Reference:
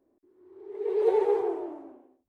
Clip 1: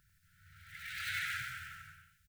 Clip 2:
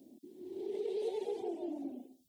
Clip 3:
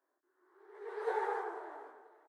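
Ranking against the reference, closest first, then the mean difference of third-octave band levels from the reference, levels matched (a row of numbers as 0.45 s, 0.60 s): 3, 2, 1; 6.0 dB, 7.5 dB, 23.5 dB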